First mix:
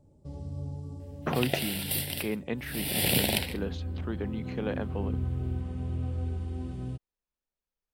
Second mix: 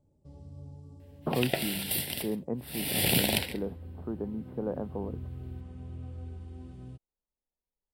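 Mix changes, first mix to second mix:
speech: add LPF 1000 Hz 24 dB/oct; first sound -9.0 dB

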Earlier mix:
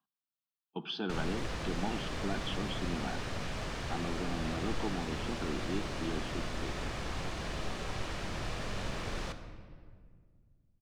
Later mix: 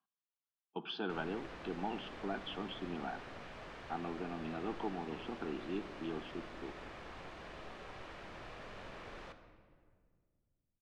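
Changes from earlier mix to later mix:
background -8.0 dB; master: add tone controls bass -9 dB, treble -13 dB

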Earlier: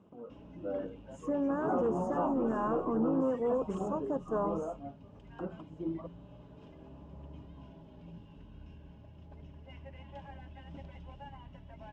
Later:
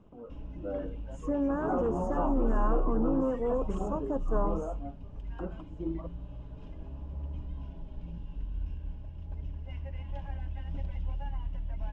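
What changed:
background: remove HPF 150 Hz 12 dB/oct; reverb: on, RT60 1.2 s

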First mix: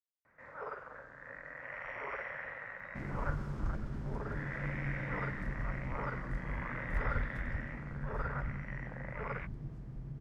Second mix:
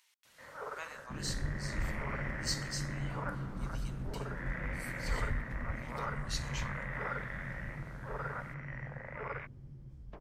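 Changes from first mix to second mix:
speech: unmuted; second sound: entry -1.85 s

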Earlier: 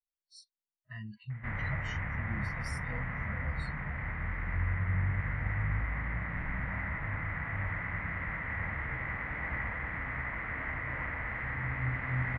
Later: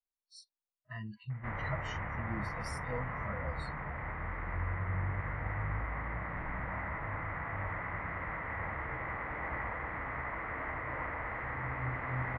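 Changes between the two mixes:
background -4.5 dB; master: add band shelf 630 Hz +8.5 dB 2.3 oct

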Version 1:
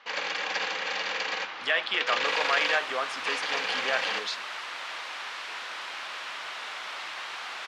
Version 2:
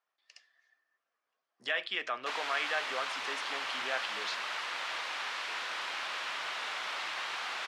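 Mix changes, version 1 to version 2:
speech -6.5 dB; first sound: muted

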